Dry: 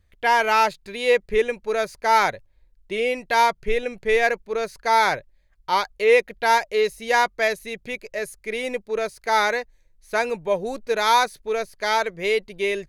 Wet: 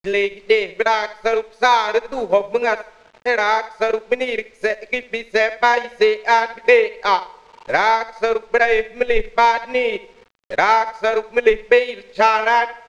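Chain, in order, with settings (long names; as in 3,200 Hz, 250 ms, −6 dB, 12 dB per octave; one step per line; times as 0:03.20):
played backwards from end to start
noise gate −49 dBFS, range −23 dB
parametric band 91 Hz −14.5 dB 1.8 octaves
repeating echo 75 ms, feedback 30%, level −11 dB
on a send at −20.5 dB: convolution reverb RT60 1.7 s, pre-delay 57 ms
on the sum: bit-depth reduction 8 bits, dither none
in parallel at +1.5 dB: brickwall limiter −17 dBFS, peak gain reduction 11.5 dB
on the sum: high-frequency loss of the air 120 metres
transient designer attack +8 dB, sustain −7 dB
level −1.5 dB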